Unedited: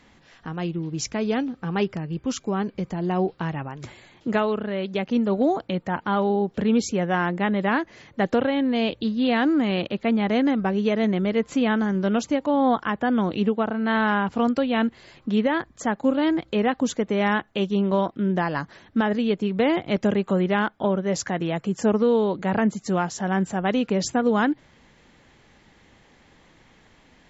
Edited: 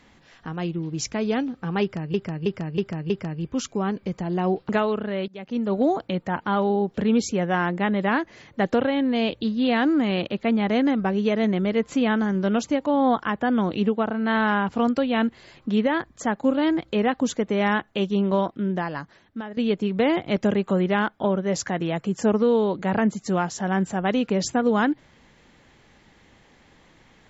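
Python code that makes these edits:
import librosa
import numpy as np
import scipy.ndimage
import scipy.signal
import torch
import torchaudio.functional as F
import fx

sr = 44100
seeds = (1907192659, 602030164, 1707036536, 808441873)

y = fx.edit(x, sr, fx.repeat(start_s=1.82, length_s=0.32, count=5),
    fx.cut(start_s=3.41, length_s=0.88),
    fx.fade_in_from(start_s=4.88, length_s=0.51, floor_db=-22.5),
    fx.fade_out_to(start_s=17.96, length_s=1.21, floor_db=-16.0), tone=tone)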